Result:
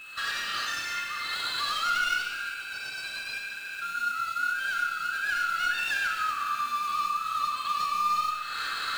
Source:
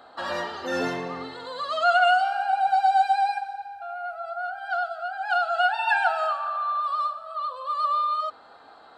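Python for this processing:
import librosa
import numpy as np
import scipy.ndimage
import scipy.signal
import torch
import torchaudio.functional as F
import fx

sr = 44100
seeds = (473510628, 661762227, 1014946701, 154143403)

p1 = fx.self_delay(x, sr, depth_ms=0.06)
p2 = fx.recorder_agc(p1, sr, target_db=-16.0, rise_db_per_s=69.0, max_gain_db=30)
p3 = scipy.signal.sosfilt(scipy.signal.butter(12, 1200.0, 'highpass', fs=sr, output='sos'), p2)
p4 = fx.high_shelf(p3, sr, hz=2000.0, db=11.0)
p5 = p4 + 10.0 ** (-33.0 / 20.0) * np.sin(2.0 * np.pi * 2600.0 * np.arange(len(p4)) / sr)
p6 = fx.sample_hold(p5, sr, seeds[0], rate_hz=5400.0, jitter_pct=20)
p7 = p5 + (p6 * librosa.db_to_amplitude(-10.0))
p8 = 10.0 ** (-16.5 / 20.0) * np.tanh(p7 / 10.0 ** (-16.5 / 20.0))
p9 = fx.rev_schroeder(p8, sr, rt60_s=1.0, comb_ms=27, drr_db=2.0)
y = p9 * librosa.db_to_amplitude(-8.5)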